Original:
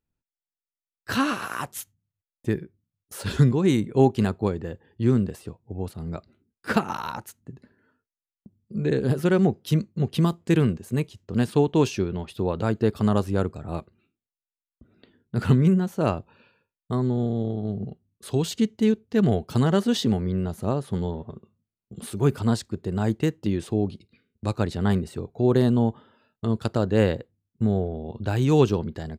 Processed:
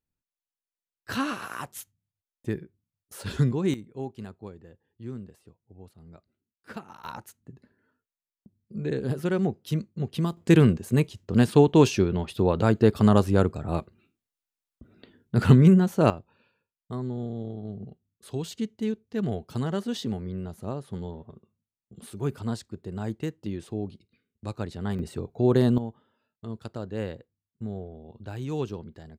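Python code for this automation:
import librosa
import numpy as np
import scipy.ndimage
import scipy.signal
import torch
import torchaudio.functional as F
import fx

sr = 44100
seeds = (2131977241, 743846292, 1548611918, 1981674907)

y = fx.gain(x, sr, db=fx.steps((0.0, -5.0), (3.74, -17.0), (7.04, -5.5), (10.37, 3.0), (16.1, -8.0), (24.99, -1.0), (25.78, -12.0)))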